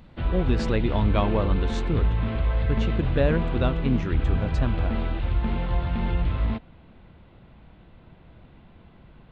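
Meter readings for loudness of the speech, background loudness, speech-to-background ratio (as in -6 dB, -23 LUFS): -28.0 LUFS, -27.0 LUFS, -1.0 dB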